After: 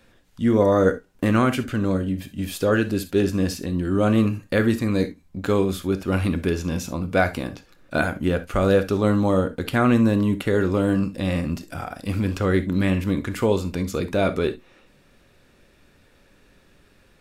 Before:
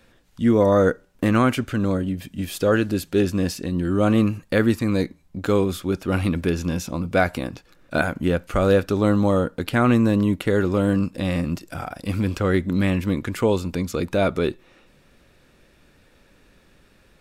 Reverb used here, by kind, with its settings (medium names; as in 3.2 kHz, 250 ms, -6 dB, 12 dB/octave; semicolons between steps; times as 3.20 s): gated-style reverb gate 90 ms flat, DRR 9.5 dB; trim -1 dB